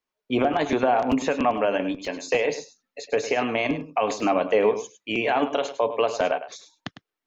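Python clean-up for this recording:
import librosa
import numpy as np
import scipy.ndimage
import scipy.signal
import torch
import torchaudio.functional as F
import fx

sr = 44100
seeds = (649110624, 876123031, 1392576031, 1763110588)

y = fx.fix_interpolate(x, sr, at_s=(1.12, 2.05, 4.2), length_ms=2.1)
y = fx.fix_echo_inverse(y, sr, delay_ms=103, level_db=-12.0)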